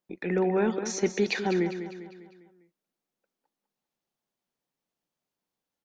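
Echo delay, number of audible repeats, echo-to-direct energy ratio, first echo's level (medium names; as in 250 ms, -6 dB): 200 ms, 4, -9.0 dB, -10.0 dB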